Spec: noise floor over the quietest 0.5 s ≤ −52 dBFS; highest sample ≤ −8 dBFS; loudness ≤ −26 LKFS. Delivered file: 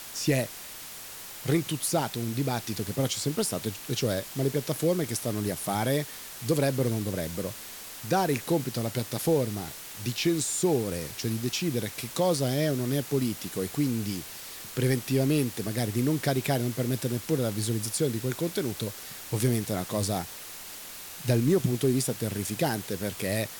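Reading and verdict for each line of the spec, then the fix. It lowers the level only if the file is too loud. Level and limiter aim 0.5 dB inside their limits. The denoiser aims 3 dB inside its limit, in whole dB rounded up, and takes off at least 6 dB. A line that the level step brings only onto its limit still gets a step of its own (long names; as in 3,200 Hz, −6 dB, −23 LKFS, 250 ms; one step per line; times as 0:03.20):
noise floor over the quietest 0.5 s −42 dBFS: out of spec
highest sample −11.5 dBFS: in spec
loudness −28.5 LKFS: in spec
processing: broadband denoise 13 dB, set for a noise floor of −42 dBFS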